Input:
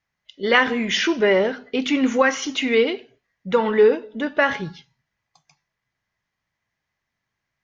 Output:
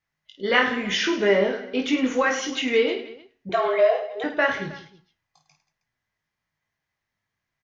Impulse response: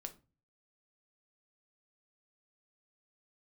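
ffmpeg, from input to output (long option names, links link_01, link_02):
-filter_complex "[0:a]flanger=delay=5.5:depth=6.2:regen=86:speed=0.47:shape=triangular,asettb=1/sr,asplit=3[link_01][link_02][link_03];[link_01]atrim=end=3.494[link_04];[link_02]atrim=start=3.49:end=4.24,asetpts=PTS-STARTPTS,afade=type=in:duration=0.004:curve=qsin,afade=type=out:start_time=0.746:duration=0.004:curve=qsin,afreqshift=190[link_05];[link_03]atrim=start=4.236[link_06];[link_04][link_05]acrossfade=duration=0.004:curve1=hsin:curve2=qsin[link_07];[link_07][link_06]acrossfade=duration=0.004:curve1=qsin:curve2=hsin,asplit=2[link_08][link_09];[link_09]aecho=0:1:20|52|103.2|185.1|316.2:0.631|0.398|0.251|0.158|0.1[link_10];[link_08][link_10]amix=inputs=2:normalize=0"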